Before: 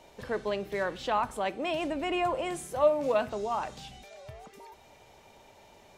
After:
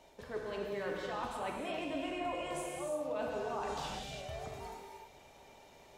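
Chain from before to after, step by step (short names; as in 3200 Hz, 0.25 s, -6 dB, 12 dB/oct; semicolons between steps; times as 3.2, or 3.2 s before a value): gate -49 dBFS, range -7 dB; reverse; compressor 6:1, threshold -41 dBFS, peak gain reduction 21 dB; reverse; non-linear reverb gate 0.37 s flat, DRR -2 dB; gain +1 dB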